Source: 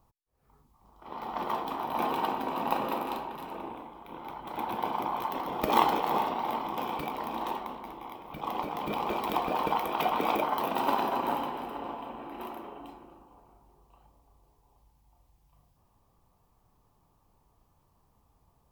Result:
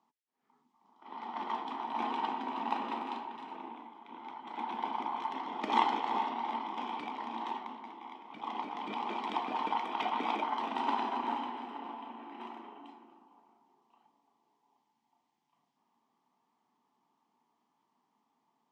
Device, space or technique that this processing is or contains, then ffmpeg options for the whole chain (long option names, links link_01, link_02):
television speaker: -af "highpass=frequency=220:width=0.5412,highpass=frequency=220:width=1.3066,equalizer=frequency=240:width_type=q:width=4:gain=8,equalizer=frequency=540:width_type=q:width=4:gain=-10,equalizer=frequency=900:width_type=q:width=4:gain=6,equalizer=frequency=2000:width_type=q:width=4:gain=7,equalizer=frequency=3200:width_type=q:width=4:gain=5,lowpass=frequency=7000:width=0.5412,lowpass=frequency=7000:width=1.3066,volume=-7.5dB"